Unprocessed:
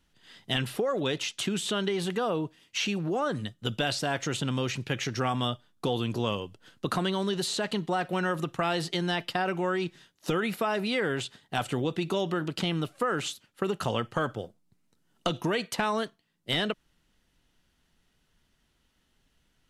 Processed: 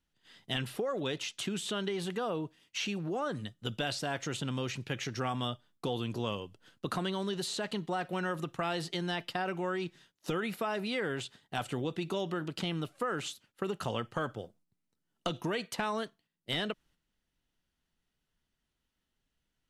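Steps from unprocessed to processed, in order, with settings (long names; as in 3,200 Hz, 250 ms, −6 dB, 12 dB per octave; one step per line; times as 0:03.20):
noise gate −58 dBFS, range −7 dB
level −5.5 dB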